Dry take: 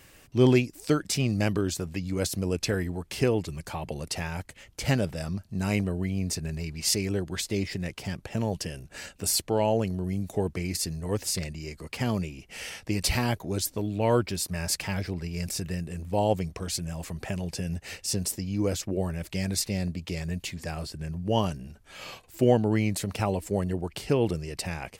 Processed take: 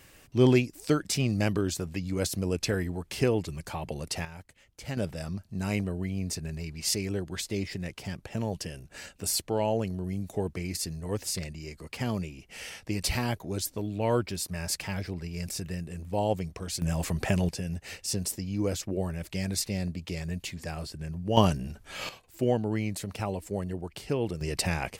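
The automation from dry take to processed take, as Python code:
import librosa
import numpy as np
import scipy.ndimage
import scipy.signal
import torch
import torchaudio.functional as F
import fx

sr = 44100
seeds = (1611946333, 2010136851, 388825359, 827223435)

y = fx.gain(x, sr, db=fx.steps((0.0, -1.0), (4.25, -11.0), (4.97, -3.0), (16.82, 6.0), (17.49, -2.0), (21.37, 5.5), (22.09, -5.0), (24.41, 4.5)))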